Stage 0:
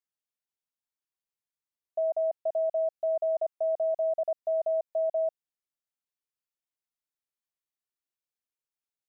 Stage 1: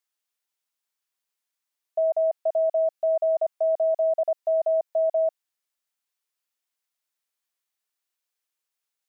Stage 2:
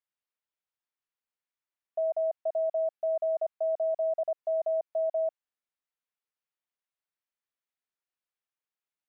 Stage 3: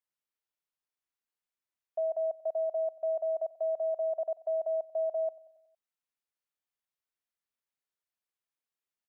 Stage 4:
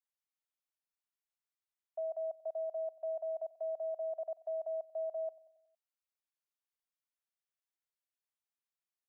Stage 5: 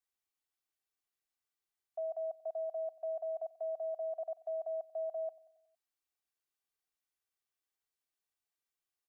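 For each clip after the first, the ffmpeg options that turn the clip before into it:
ffmpeg -i in.wav -af "highpass=frequency=780:poles=1,volume=9dB" out.wav
ffmpeg -i in.wav -af "bass=frequency=250:gain=1,treble=frequency=4000:gain=-13,volume=-6dB" out.wav
ffmpeg -i in.wav -af "aecho=1:1:92|184|276|368|460:0.1|0.058|0.0336|0.0195|0.0113,volume=-2dB" out.wav
ffmpeg -i in.wav -af "highpass=frequency=530:width=0.5412,highpass=frequency=530:width=1.3066,volume=-6dB" out.wav
ffmpeg -i in.wav -af "aecho=1:1:2.6:0.44,volume=1dB" out.wav

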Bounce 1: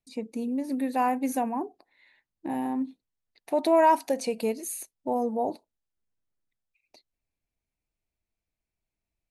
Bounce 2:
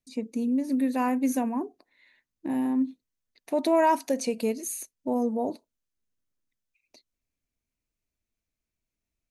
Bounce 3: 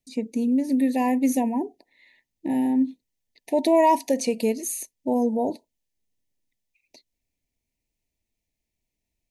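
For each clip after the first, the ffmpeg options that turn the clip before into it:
ffmpeg -i in.wav -af "equalizer=frequency=250:width_type=o:width=0.33:gain=5,equalizer=frequency=800:width_type=o:width=0.33:gain=-8,equalizer=frequency=6300:width_type=o:width=0.33:gain=5" out.wav
ffmpeg -i in.wav -af "asuperstop=centerf=1300:order=20:qfactor=1.8,volume=4dB" out.wav

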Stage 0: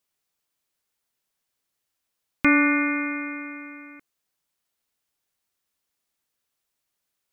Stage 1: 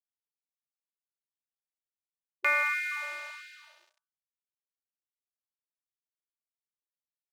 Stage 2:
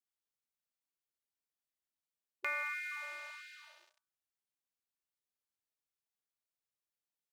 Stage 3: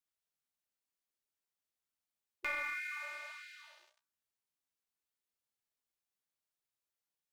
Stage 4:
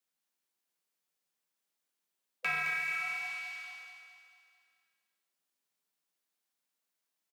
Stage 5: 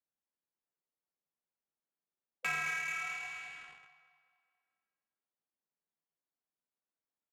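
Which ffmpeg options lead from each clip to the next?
ffmpeg -i in.wav -af "aeval=exprs='sgn(val(0))*max(abs(val(0))-0.0133,0)':channel_layout=same,bandreject=frequency=67.88:width_type=h:width=4,bandreject=frequency=135.76:width_type=h:width=4,bandreject=frequency=203.64:width_type=h:width=4,bandreject=frequency=271.52:width_type=h:width=4,bandreject=frequency=339.4:width_type=h:width=4,bandreject=frequency=407.28:width_type=h:width=4,bandreject=frequency=475.16:width_type=h:width=4,bandreject=frequency=543.04:width_type=h:width=4,bandreject=frequency=610.92:width_type=h:width=4,bandreject=frequency=678.8:width_type=h:width=4,bandreject=frequency=746.68:width_type=h:width=4,bandreject=frequency=814.56:width_type=h:width=4,bandreject=frequency=882.44:width_type=h:width=4,bandreject=frequency=950.32:width_type=h:width=4,bandreject=frequency=1018.2:width_type=h:width=4,bandreject=frequency=1086.08:width_type=h:width=4,bandreject=frequency=1153.96:width_type=h:width=4,bandreject=frequency=1221.84:width_type=h:width=4,bandreject=frequency=1289.72:width_type=h:width=4,bandreject=frequency=1357.6:width_type=h:width=4,bandreject=frequency=1425.48:width_type=h:width=4,bandreject=frequency=1493.36:width_type=h:width=4,bandreject=frequency=1561.24:width_type=h:width=4,bandreject=frequency=1629.12:width_type=h:width=4,bandreject=frequency=1697:width_type=h:width=4,afftfilt=real='re*gte(b*sr/1024,330*pow(1500/330,0.5+0.5*sin(2*PI*1.5*pts/sr)))':imag='im*gte(b*sr/1024,330*pow(1500/330,0.5+0.5*sin(2*PI*1.5*pts/sr)))':win_size=1024:overlap=0.75,volume=-4.5dB" out.wav
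ffmpeg -i in.wav -af "acompressor=threshold=-51dB:ratio=1.5,volume=-1dB" out.wav
ffmpeg -i in.wav -filter_complex "[0:a]flanger=delay=7.1:depth=10:regen=45:speed=0.9:shape=triangular,acrossover=split=240|2000[link_01][link_02][link_03];[link_02]aeval=exprs='clip(val(0),-1,0.00562)':channel_layout=same[link_04];[link_01][link_04][link_03]amix=inputs=3:normalize=0,volume=4dB" out.wav
ffmpeg -i in.wav -filter_complex "[0:a]afreqshift=150,asplit=2[link_01][link_02];[link_02]aecho=0:1:217|434|651|868|1085|1302|1519:0.473|0.256|0.138|0.0745|0.0402|0.0217|0.0117[link_03];[link_01][link_03]amix=inputs=2:normalize=0,volume=4.5dB" out.wav
ffmpeg -i in.wav -filter_complex "[0:a]asplit=2[link_01][link_02];[link_02]acrusher=bits=6:mix=0:aa=0.000001,volume=-11dB[link_03];[link_01][link_03]amix=inputs=2:normalize=0,adynamicsmooth=sensitivity=7:basefreq=1400,asplit=2[link_04][link_05];[link_05]adelay=13,volume=-13dB[link_06];[link_04][link_06]amix=inputs=2:normalize=0,volume=-4dB" out.wav

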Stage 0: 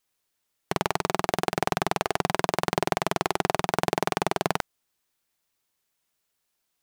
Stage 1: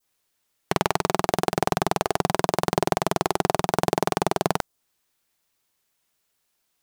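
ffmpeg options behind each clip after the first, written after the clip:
ffmpeg -i in.wav -af "adynamicequalizer=threshold=0.00562:dfrequency=2200:dqfactor=0.82:tfrequency=2200:tqfactor=0.82:attack=5:release=100:ratio=0.375:range=3:mode=cutabove:tftype=bell,volume=4dB" out.wav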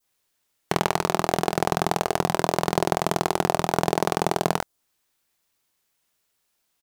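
ffmpeg -i in.wav -filter_complex "[0:a]asplit=2[link_01][link_02];[link_02]adelay=24,volume=-12dB[link_03];[link_01][link_03]amix=inputs=2:normalize=0" out.wav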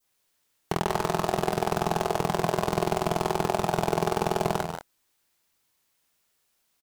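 ffmpeg -i in.wav -filter_complex "[0:a]asoftclip=type=tanh:threshold=-13dB,asplit=2[link_01][link_02];[link_02]aecho=0:1:148.7|183.7:0.398|0.355[link_03];[link_01][link_03]amix=inputs=2:normalize=0" out.wav

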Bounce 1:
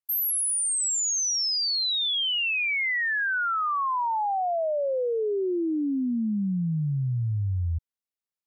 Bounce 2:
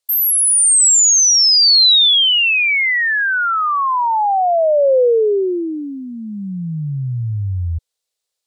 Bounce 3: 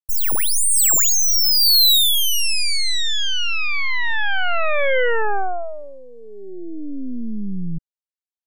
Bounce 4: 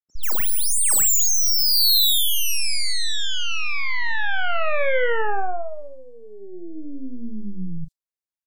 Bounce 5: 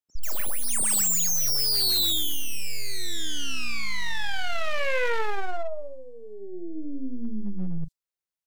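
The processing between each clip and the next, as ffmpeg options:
ffmpeg -i in.wav -filter_complex "[0:a]equalizer=frequency=250:width_type=o:width=1:gain=-12,equalizer=frequency=500:width_type=o:width=1:gain=12,equalizer=frequency=4000:width_type=o:width=1:gain=10,equalizer=frequency=8000:width_type=o:width=1:gain=9,asplit=2[link_01][link_02];[link_02]alimiter=limit=-19.5dB:level=0:latency=1,volume=-0.5dB[link_03];[link_01][link_03]amix=inputs=2:normalize=0,volume=1.5dB" out.wav
ffmpeg -i in.wav -af "aeval=exprs='0.473*(cos(1*acos(clip(val(0)/0.473,-1,1)))-cos(1*PI/2))+0.168*(cos(3*acos(clip(val(0)/0.473,-1,1)))-cos(3*PI/2))+0.133*(cos(6*acos(clip(val(0)/0.473,-1,1)))-cos(6*PI/2))':channel_layout=same,volume=-3dB" out.wav
ffmpeg -i in.wav -filter_complex "[0:a]asplit=2[link_01][link_02];[link_02]adelay=38,volume=-11.5dB[link_03];[link_01][link_03]amix=inputs=2:normalize=0,acrossover=split=230|3200[link_04][link_05][link_06];[link_04]adelay=60[link_07];[link_06]adelay=140[link_08];[link_07][link_05][link_08]amix=inputs=3:normalize=0,volume=-2.5dB" out.wav
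ffmpeg -i in.wav -af "asoftclip=type=hard:threshold=-20.5dB" out.wav

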